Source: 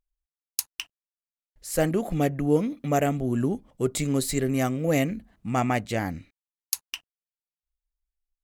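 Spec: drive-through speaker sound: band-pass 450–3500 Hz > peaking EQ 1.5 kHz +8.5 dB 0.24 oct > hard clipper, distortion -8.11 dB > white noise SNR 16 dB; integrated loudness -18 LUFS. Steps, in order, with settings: band-pass 450–3500 Hz; peaking EQ 1.5 kHz +8.5 dB 0.24 oct; hard clipper -25 dBFS; white noise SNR 16 dB; trim +16 dB

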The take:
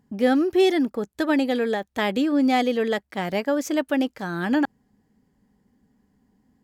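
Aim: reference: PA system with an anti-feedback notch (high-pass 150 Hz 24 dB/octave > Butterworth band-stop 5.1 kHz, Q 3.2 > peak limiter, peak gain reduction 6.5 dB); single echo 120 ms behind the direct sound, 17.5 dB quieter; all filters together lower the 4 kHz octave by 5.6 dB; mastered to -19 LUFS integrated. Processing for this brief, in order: high-pass 150 Hz 24 dB/octave; Butterworth band-stop 5.1 kHz, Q 3.2; peaking EQ 4 kHz -7 dB; delay 120 ms -17.5 dB; trim +5.5 dB; peak limiter -9 dBFS

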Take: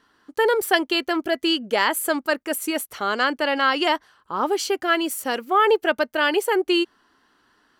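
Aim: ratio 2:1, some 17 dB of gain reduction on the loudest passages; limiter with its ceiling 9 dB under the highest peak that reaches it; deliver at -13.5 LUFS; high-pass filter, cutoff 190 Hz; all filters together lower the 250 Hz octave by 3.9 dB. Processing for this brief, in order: high-pass 190 Hz; peaking EQ 250 Hz -5.5 dB; compression 2:1, threshold -47 dBFS; trim +26.5 dB; peak limiter -2.5 dBFS

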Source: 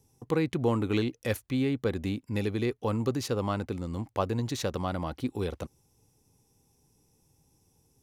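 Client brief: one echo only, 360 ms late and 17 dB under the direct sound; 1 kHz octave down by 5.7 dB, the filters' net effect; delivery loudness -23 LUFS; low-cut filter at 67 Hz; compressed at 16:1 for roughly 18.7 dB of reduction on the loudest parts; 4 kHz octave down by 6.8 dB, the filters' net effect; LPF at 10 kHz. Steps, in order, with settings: high-pass 67 Hz; low-pass 10 kHz; peaking EQ 1 kHz -7 dB; peaking EQ 4 kHz -8 dB; compression 16:1, threshold -42 dBFS; delay 360 ms -17 dB; trim +24.5 dB

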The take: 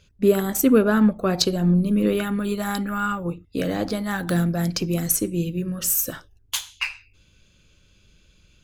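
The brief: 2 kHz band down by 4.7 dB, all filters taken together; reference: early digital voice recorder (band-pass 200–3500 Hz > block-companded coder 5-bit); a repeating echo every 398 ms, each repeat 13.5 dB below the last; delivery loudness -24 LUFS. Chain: band-pass 200–3500 Hz; peaking EQ 2 kHz -6.5 dB; feedback delay 398 ms, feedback 21%, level -13.5 dB; block-companded coder 5-bit; trim +1 dB

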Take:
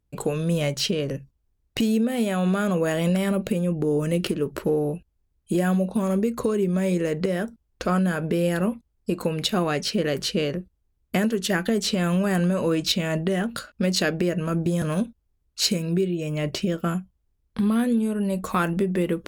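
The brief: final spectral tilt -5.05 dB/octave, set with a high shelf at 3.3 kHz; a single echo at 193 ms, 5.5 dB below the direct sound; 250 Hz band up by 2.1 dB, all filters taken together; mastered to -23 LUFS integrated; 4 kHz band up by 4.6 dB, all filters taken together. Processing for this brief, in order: peaking EQ 250 Hz +3 dB; treble shelf 3.3 kHz +3.5 dB; peaking EQ 4 kHz +3 dB; delay 193 ms -5.5 dB; trim -1.5 dB

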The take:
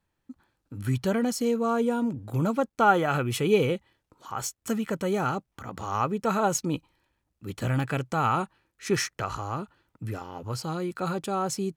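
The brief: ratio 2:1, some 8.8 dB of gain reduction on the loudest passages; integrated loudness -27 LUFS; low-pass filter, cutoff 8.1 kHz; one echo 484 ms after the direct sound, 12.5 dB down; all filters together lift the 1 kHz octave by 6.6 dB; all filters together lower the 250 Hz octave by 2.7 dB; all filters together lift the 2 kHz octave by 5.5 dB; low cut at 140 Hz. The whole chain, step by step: high-pass 140 Hz; low-pass 8.1 kHz; peaking EQ 250 Hz -3 dB; peaking EQ 1 kHz +8 dB; peaking EQ 2 kHz +4 dB; compression 2:1, threshold -26 dBFS; delay 484 ms -12.5 dB; trim +2.5 dB

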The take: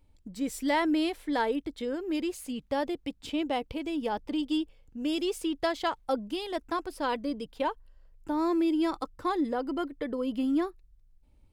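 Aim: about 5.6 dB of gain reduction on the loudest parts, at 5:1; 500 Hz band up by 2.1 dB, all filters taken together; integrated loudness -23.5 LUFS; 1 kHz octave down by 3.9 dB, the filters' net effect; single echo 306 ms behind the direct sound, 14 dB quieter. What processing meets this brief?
peaking EQ 500 Hz +4.5 dB; peaking EQ 1 kHz -6.5 dB; compression 5:1, threshold -28 dBFS; delay 306 ms -14 dB; trim +10 dB

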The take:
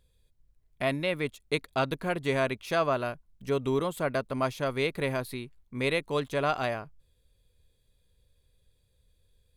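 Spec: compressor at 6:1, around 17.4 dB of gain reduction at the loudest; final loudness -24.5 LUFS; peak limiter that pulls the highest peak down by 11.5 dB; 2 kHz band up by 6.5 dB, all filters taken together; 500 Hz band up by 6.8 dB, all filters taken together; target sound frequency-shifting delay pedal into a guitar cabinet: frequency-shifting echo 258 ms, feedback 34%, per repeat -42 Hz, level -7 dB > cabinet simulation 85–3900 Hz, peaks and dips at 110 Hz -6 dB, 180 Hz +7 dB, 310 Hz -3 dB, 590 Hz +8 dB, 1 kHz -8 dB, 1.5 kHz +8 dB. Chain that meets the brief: peaking EQ 500 Hz +3.5 dB; peaking EQ 2 kHz +4 dB; compression 6:1, threshold -40 dBFS; peak limiter -36 dBFS; frequency-shifting echo 258 ms, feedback 34%, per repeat -42 Hz, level -7 dB; cabinet simulation 85–3900 Hz, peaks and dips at 110 Hz -6 dB, 180 Hz +7 dB, 310 Hz -3 dB, 590 Hz +8 dB, 1 kHz -8 dB, 1.5 kHz +8 dB; trim +19 dB

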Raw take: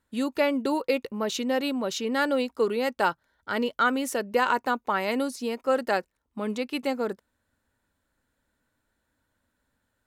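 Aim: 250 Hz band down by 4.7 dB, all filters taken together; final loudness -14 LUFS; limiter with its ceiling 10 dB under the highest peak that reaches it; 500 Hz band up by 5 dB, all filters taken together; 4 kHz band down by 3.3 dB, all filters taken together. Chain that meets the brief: peaking EQ 250 Hz -7 dB; peaking EQ 500 Hz +7 dB; peaking EQ 4 kHz -4.5 dB; trim +14 dB; peak limiter -3.5 dBFS

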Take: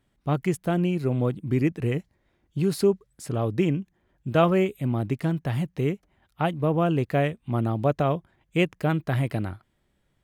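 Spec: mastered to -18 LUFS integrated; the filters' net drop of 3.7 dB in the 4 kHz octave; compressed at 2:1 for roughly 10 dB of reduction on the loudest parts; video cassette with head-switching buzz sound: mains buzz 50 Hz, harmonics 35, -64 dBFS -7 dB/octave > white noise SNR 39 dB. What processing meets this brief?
peaking EQ 4 kHz -5.5 dB; compression 2:1, threshold -34 dBFS; mains buzz 50 Hz, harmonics 35, -64 dBFS -7 dB/octave; white noise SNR 39 dB; trim +15.5 dB

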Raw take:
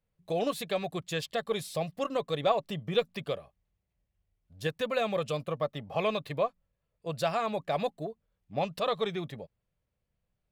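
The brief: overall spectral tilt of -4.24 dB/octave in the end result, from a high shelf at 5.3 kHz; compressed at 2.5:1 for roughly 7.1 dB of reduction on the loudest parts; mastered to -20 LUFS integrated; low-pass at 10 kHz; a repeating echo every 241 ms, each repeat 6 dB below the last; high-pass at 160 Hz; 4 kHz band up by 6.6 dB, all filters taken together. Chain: high-pass 160 Hz; low-pass 10 kHz; peaking EQ 4 kHz +9 dB; treble shelf 5.3 kHz -3.5 dB; compression 2.5:1, threshold -31 dBFS; feedback delay 241 ms, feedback 50%, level -6 dB; trim +14.5 dB

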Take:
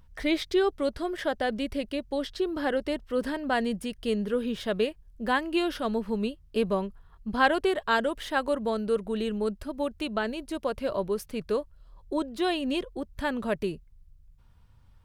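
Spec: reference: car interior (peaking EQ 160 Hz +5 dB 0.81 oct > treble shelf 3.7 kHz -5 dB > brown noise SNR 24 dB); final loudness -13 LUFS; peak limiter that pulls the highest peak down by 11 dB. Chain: peak limiter -19.5 dBFS; peaking EQ 160 Hz +5 dB 0.81 oct; treble shelf 3.7 kHz -5 dB; brown noise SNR 24 dB; trim +17.5 dB

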